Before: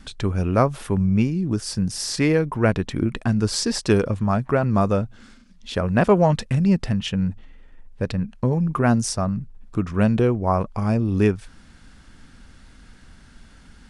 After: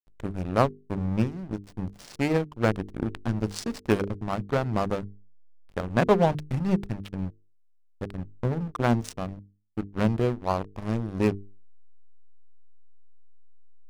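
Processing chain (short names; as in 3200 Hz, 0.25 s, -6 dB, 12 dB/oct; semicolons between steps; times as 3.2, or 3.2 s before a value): backlash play -18 dBFS; power-law curve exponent 1.4; notches 50/100/150/200/250/300/350/400/450 Hz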